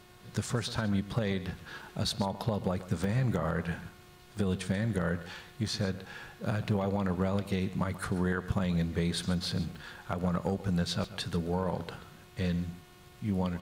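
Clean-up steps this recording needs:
clipped peaks rebuilt −18 dBFS
hum removal 361.3 Hz, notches 12
repair the gap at 0:01.82/0:03.04/0:04.37/0:05.68/0:09.75/0:11.04, 2.4 ms
echo removal 135 ms −15 dB

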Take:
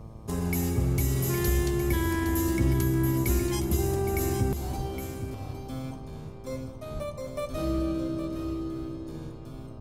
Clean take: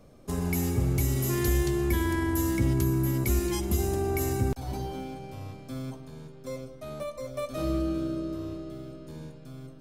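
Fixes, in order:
hum removal 111.4 Hz, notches 11
0:04.76–0:04.88: high-pass filter 140 Hz 24 dB per octave
0:06.93–0:07.05: high-pass filter 140 Hz 24 dB per octave
0:07.51–0:07.63: high-pass filter 140 Hz 24 dB per octave
noise reduction from a noise print 6 dB
echo removal 814 ms −9.5 dB

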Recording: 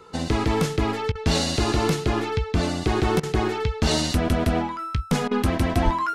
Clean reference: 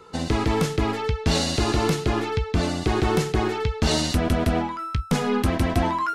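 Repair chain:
high-pass at the plosives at 0:05.84
repair the gap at 0:01.12/0:03.20/0:05.28, 31 ms

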